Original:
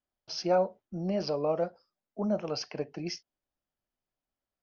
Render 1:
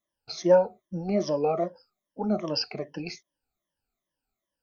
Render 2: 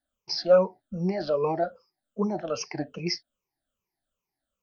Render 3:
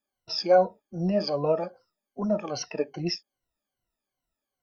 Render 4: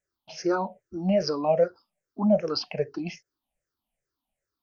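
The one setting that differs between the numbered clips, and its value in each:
rippled gain that drifts along the octave scale, ripples per octave: 1.2, 0.79, 2, 0.52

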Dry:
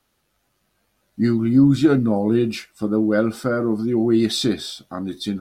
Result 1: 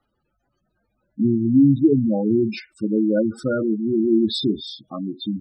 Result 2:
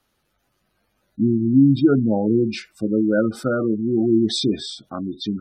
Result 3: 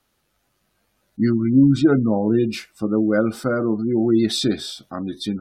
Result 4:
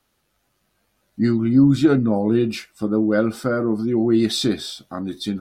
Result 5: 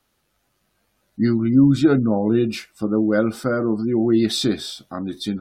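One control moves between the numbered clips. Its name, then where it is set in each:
gate on every frequency bin, under each frame's peak: −10, −20, −35, −60, −45 decibels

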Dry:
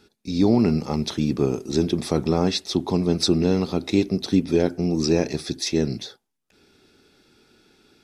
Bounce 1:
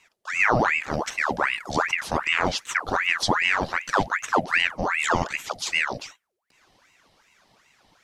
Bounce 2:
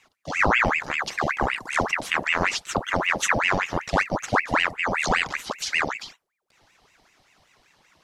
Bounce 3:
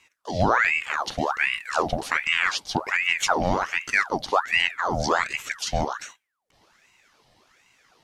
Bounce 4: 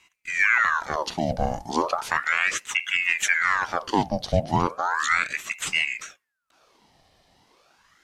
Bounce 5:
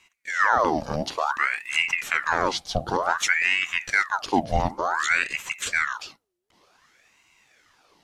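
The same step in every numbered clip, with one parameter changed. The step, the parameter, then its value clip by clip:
ring modulator whose carrier an LFO sweeps, at: 2.6, 5.2, 1.3, 0.35, 0.55 Hertz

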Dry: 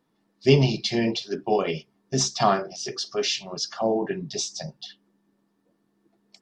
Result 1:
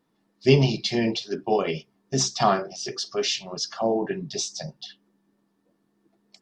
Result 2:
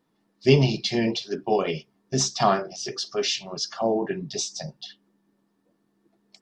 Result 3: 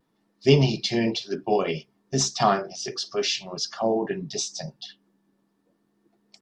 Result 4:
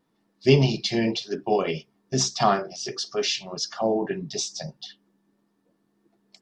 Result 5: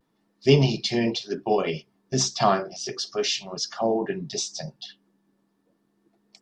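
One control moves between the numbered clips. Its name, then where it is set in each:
pitch vibrato, speed: 3.4, 5.5, 0.53, 1.7, 0.34 Hertz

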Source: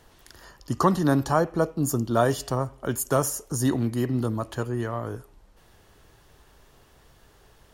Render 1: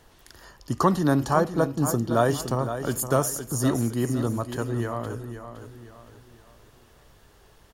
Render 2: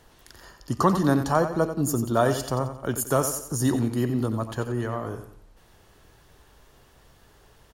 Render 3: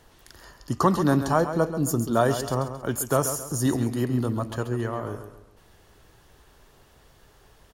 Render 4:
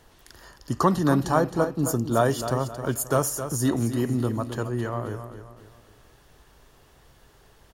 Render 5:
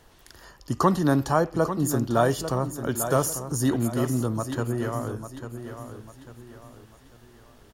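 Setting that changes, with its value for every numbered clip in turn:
repeating echo, delay time: 515, 90, 135, 266, 846 milliseconds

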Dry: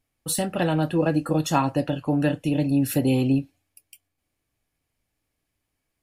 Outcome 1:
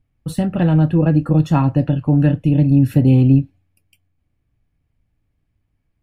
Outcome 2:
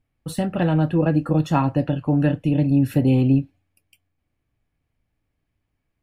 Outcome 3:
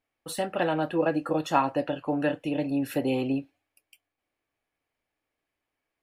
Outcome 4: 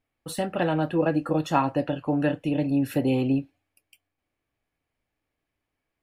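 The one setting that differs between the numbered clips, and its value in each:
bass and treble, bass: +15, +7, −14, −5 decibels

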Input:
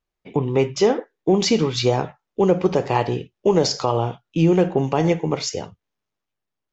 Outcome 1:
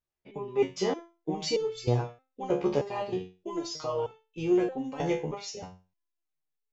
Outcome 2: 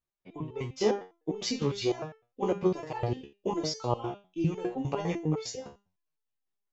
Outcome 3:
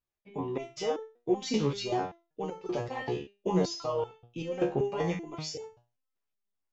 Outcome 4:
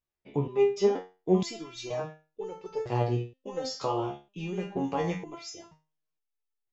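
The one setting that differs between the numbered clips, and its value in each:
step-sequenced resonator, speed: 3.2, 9.9, 5.2, 2.1 Hertz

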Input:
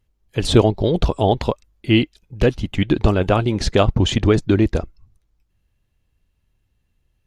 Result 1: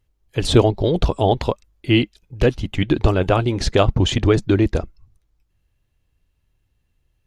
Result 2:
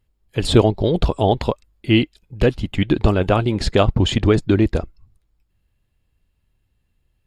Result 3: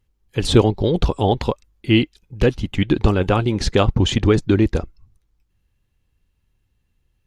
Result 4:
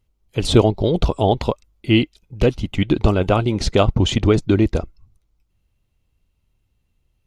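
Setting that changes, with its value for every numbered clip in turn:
notch filter, centre frequency: 210, 6,000, 640, 1,700 Hertz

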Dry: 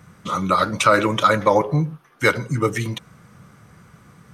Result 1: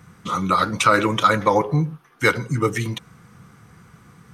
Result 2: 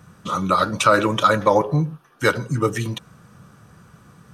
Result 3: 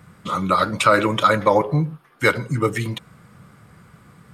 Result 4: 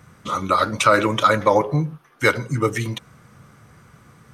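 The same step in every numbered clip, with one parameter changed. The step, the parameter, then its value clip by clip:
notch filter, centre frequency: 590, 2,100, 6,000, 180 Hertz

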